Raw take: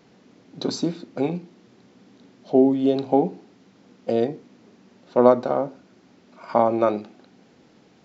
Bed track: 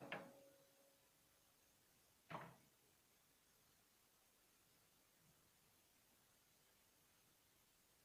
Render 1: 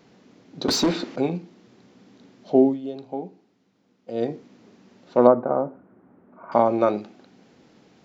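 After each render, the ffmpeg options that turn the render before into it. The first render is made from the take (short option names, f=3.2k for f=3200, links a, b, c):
-filter_complex "[0:a]asettb=1/sr,asplit=3[a][b][c];[a]atrim=end=0.684[d];[b]atrim=start=0.68:end=1.16,asetpts=PTS-STARTPTS,afade=t=in:d=0.004:c=qsin,afade=t=out:st=0.476:d=0.004:c=qsin,asplit=2[e][f];[f]highpass=f=720:p=1,volume=23dB,asoftclip=type=tanh:threshold=-11.5dB[g];[e][g]amix=inputs=2:normalize=0,lowpass=f=4.2k:p=1,volume=-6dB[h];[c]atrim=start=1.156[i];[d][h]acrossfade=d=0.004:c1=hsin:c2=qsin[j];[j][i]acrossfade=d=0.004:c1=qsin:c2=hsin,asettb=1/sr,asplit=3[k][l][m];[k]atrim=end=5.274[n];[l]atrim=start=5.27:end=6.52,asetpts=PTS-STARTPTS,afade=t=in:d=0.004:c=qsin,afade=t=out:st=1.246:d=0.004:c=qsin,lowpass=f=1.5k:w=0.5412,lowpass=f=1.5k:w=1.3066[o];[m]atrim=start=6.516[p];[n][o]acrossfade=d=0.004:c1=hsin:c2=qsin[q];[q][p]acrossfade=d=0.004:c1=qsin:c2=hsin,asplit=3[r][s][t];[r]atrim=end=2.81,asetpts=PTS-STARTPTS,afade=t=out:st=2.63:d=0.18:silence=0.237137[u];[s]atrim=start=2.81:end=4.11,asetpts=PTS-STARTPTS,volume=-12.5dB[v];[t]atrim=start=4.11,asetpts=PTS-STARTPTS,afade=t=in:d=0.18:silence=0.237137[w];[u][v][w]concat=n=3:v=0:a=1"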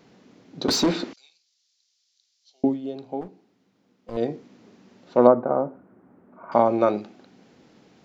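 -filter_complex "[0:a]asettb=1/sr,asplit=3[a][b][c];[a]atrim=end=1.134[d];[b]atrim=start=1.13:end=2.64,asetpts=PTS-STARTPTS,afade=t=in:d=0.004:c=qsin,afade=t=out:st=1.506:d=0.004:c=qsin,asuperpass=centerf=5700:order=4:qfactor=1.6[e];[c]atrim=start=2.636[f];[d][e]acrossfade=d=0.004:c1=hsin:c2=qsin[g];[g][f]acrossfade=d=0.004:c1=qsin:c2=hsin,asettb=1/sr,asplit=3[h][i][j];[h]atrim=end=3.214[k];[i]atrim=start=3.21:end=4.17,asetpts=PTS-STARTPTS,afade=t=in:d=0.004:c=qsin,afade=t=out:st=0.956:d=0.004:c=qsin,aeval=exprs='clip(val(0),-1,0.00944)':c=same[l];[j]atrim=start=4.166[m];[k][l]acrossfade=d=0.004:c1=hsin:c2=qsin[n];[n][m]acrossfade=d=0.004:c1=qsin:c2=hsin"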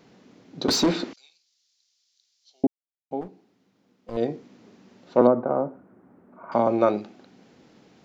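-filter_complex "[0:a]asettb=1/sr,asplit=3[a][b][c];[a]atrim=end=5.214[d];[b]atrim=start=5.21:end=6.67,asetpts=PTS-STARTPTS,afade=t=in:d=0.004:c=qsin,afade=t=out:st=1.456:d=0.004:c=qsin,acrossover=split=430|3000[e][f][g];[f]acompressor=threshold=-22dB:ratio=2:attack=3.2:release=140:knee=2.83:detection=peak[h];[e][h][g]amix=inputs=3:normalize=0[i];[c]atrim=start=6.666[j];[d][i]acrossfade=d=0.004:c1=hsin:c2=qsin[k];[k][j]acrossfade=d=0.004:c1=qsin:c2=hsin,asplit=3[l][m][n];[l]atrim=end=2.67,asetpts=PTS-STARTPTS,afade=t=out:st=2.666:d=0.004:c=hsin[o];[m]atrim=start=2.67:end=3.11,asetpts=PTS-STARTPTS,volume=0[p];[n]atrim=start=3.11,asetpts=PTS-STARTPTS,afade=t=in:d=0.004:c=hsin[q];[o][p][q]concat=n=3:v=0:a=1"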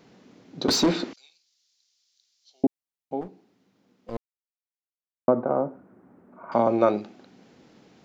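-filter_complex "[0:a]asplit=3[a][b][c];[a]atrim=end=4.17,asetpts=PTS-STARTPTS,afade=t=out:st=4.166:d=0.004:c=hsin[d];[b]atrim=start=4.17:end=5.28,asetpts=PTS-STARTPTS,volume=0[e];[c]atrim=start=5.28,asetpts=PTS-STARTPTS,afade=t=in:d=0.004:c=hsin[f];[d][e][f]concat=n=3:v=0:a=1"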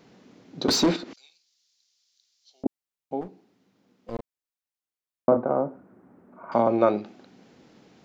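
-filter_complex "[0:a]asettb=1/sr,asplit=3[a][b][c];[a]atrim=end=0.964[d];[b]atrim=start=0.96:end=2.66,asetpts=PTS-STARTPTS,afade=t=in:d=0.004:c=qsin,afade=t=out:st=1.696:d=0.004:c=qsin,acompressor=threshold=-35dB:ratio=4:attack=3.2:release=140:knee=1:detection=peak[e];[c]atrim=start=2.656[f];[d][e]acrossfade=d=0.004:c1=hsin:c2=qsin[g];[g][f]acrossfade=d=0.004:c1=qsin:c2=hsin,asettb=1/sr,asplit=3[h][i][j];[h]atrim=end=4.154[k];[i]atrim=start=4.15:end=5.37,asetpts=PTS-STARTPTS,afade=t=in:d=0.004:c=qsin,afade=t=out:st=1.216:d=0.004:c=qsin,asplit=2[l][m];[m]adelay=38,volume=-6dB[n];[l][n]amix=inputs=2:normalize=0,atrim=end_sample=53802[o];[j]atrim=start=5.366[p];[k][o]acrossfade=d=0.004:c1=hsin:c2=qsin[q];[q][p]acrossfade=d=0.004:c1=qsin:c2=hsin,asettb=1/sr,asplit=3[r][s][t];[r]atrim=end=6.614[u];[s]atrim=start=6.61:end=7.06,asetpts=PTS-STARTPTS,afade=t=in:d=0.004:c=qsin,afade=t=out:st=0.446:d=0.004:c=qsin,lowpass=4.9k[v];[t]atrim=start=7.056[w];[u][v]acrossfade=d=0.004:c1=hsin:c2=qsin[x];[x][w]acrossfade=d=0.004:c1=qsin:c2=hsin"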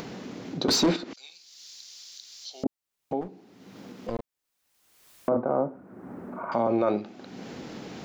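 -af "alimiter=limit=-14.5dB:level=0:latency=1:release=29,acompressor=mode=upward:threshold=-26dB:ratio=2.5"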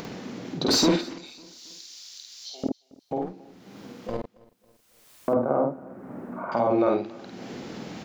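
-filter_complex "[0:a]asplit=2[a][b];[b]adelay=50,volume=-2.5dB[c];[a][c]amix=inputs=2:normalize=0,aecho=1:1:275|550|825:0.0631|0.0309|0.0151"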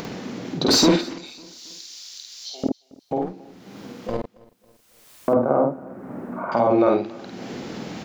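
-af "volume=4.5dB"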